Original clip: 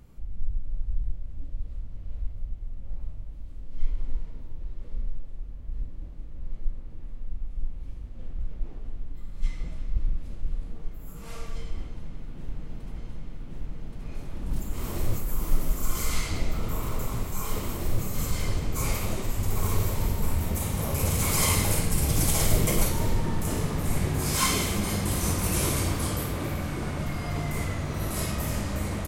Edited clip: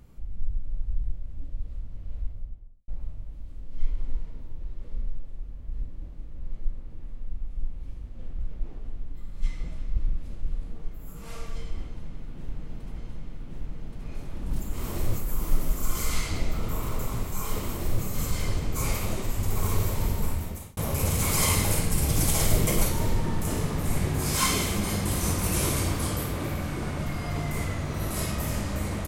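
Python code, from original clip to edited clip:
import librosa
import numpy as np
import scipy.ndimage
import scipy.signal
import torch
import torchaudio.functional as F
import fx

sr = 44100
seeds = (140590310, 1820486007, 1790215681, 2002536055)

y = fx.studio_fade_out(x, sr, start_s=2.2, length_s=0.68)
y = fx.edit(y, sr, fx.fade_out_span(start_s=20.2, length_s=0.57), tone=tone)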